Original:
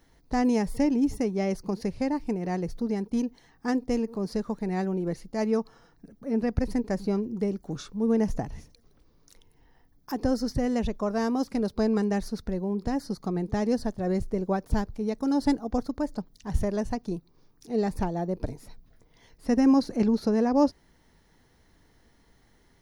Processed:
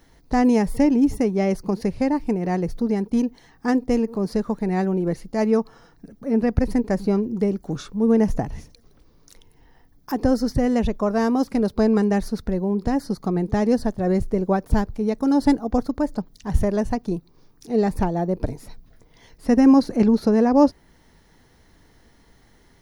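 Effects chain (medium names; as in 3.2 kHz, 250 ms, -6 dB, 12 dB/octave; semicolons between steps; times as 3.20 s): dynamic bell 5.4 kHz, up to -4 dB, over -55 dBFS, Q 0.85; trim +6.5 dB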